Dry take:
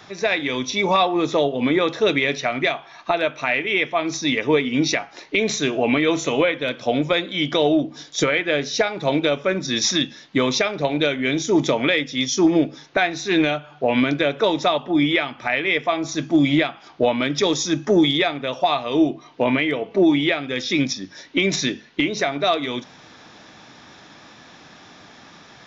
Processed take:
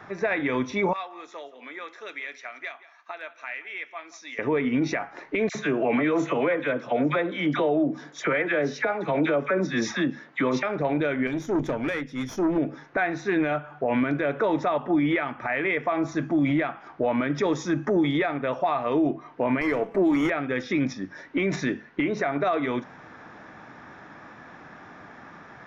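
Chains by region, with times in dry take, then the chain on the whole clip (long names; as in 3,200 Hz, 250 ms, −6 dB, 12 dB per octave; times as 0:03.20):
0:00.93–0:04.39: high-pass filter 190 Hz 24 dB per octave + first difference + single-tap delay 175 ms −18 dB
0:05.49–0:10.63: high-pass filter 120 Hz + all-pass dispersion lows, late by 58 ms, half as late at 1,200 Hz
0:11.27–0:12.58: parametric band 960 Hz −8.5 dB 2.4 octaves + tube saturation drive 19 dB, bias 0.5
0:19.61–0:20.30: high-pass filter 140 Hz 24 dB per octave + high-shelf EQ 3,000 Hz +5 dB + windowed peak hold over 5 samples
whole clip: high shelf with overshoot 2,500 Hz −13.5 dB, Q 1.5; brickwall limiter −15.5 dBFS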